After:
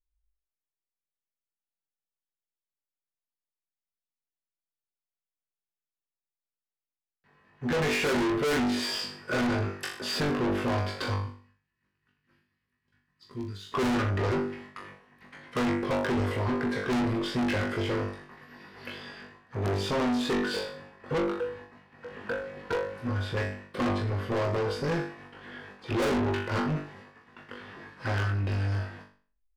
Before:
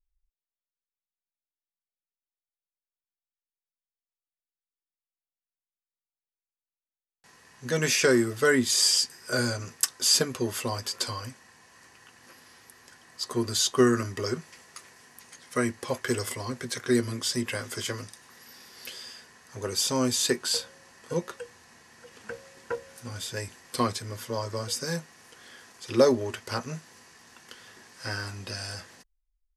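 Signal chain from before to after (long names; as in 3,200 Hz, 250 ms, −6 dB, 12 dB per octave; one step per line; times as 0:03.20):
high-frequency loss of the air 460 metres
0:23.42–0:23.97: flanger swept by the level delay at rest 7.8 ms, full sweep at −22.5 dBFS
auto-filter notch saw down 8.8 Hz 450–5,300 Hz
in parallel at −4 dB: dead-zone distortion −40.5 dBFS
on the sum: noise gate −58 dBFS, range −13 dB
0:11.14–0:13.72: guitar amp tone stack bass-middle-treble 6-0-2
on a send: flutter between parallel walls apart 3.5 metres, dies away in 0.43 s
on the sum: soft clipping −33.5 dBFS, distortion 0 dB
level +8.5 dB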